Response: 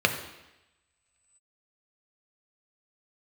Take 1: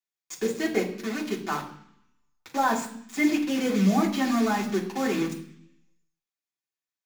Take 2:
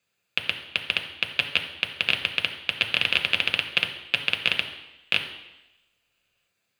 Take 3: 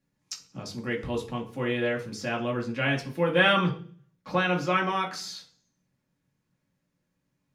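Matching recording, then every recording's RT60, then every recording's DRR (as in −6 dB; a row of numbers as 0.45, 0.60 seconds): 2; 0.65, 0.95, 0.45 seconds; −2.5, 4.5, −1.5 decibels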